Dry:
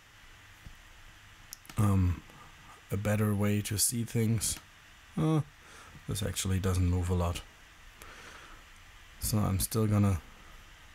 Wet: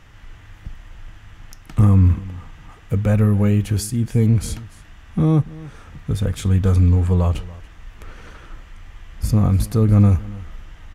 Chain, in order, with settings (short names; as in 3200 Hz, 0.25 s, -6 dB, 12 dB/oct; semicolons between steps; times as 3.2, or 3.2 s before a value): tilt -2.5 dB/oct; on a send: echo 0.285 s -20 dB; on the sum: gain +6.5 dB